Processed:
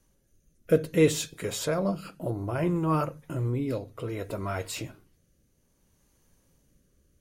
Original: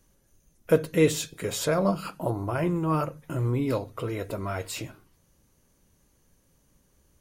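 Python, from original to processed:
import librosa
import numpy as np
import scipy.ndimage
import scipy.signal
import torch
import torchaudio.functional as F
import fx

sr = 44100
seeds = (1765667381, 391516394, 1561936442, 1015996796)

y = fx.rotary(x, sr, hz=0.6)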